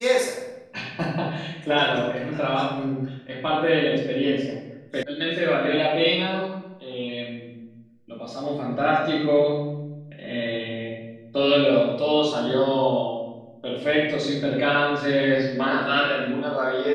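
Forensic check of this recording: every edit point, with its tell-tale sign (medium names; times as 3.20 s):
5.03 s: sound stops dead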